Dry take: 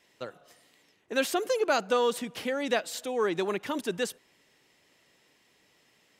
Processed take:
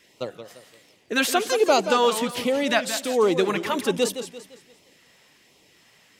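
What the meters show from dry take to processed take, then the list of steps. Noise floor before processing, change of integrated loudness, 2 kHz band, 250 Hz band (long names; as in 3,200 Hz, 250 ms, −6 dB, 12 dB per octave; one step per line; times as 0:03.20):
−67 dBFS, +7.0 dB, +7.0 dB, +7.5 dB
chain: auto-filter notch sine 1.3 Hz 280–1,700 Hz
feedback echo with a swinging delay time 171 ms, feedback 39%, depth 191 cents, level −10 dB
level +8.5 dB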